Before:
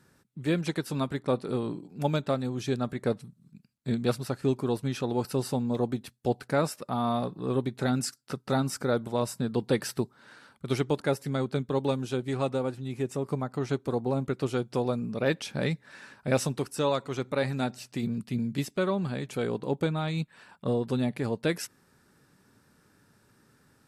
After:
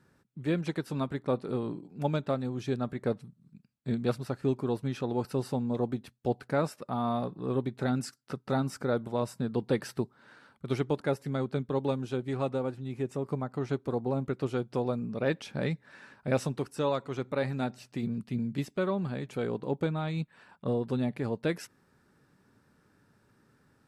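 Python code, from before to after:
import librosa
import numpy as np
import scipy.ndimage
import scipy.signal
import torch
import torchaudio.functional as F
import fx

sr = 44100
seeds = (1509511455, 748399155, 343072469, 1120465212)

y = fx.high_shelf(x, sr, hz=3800.0, db=-9.0)
y = F.gain(torch.from_numpy(y), -2.0).numpy()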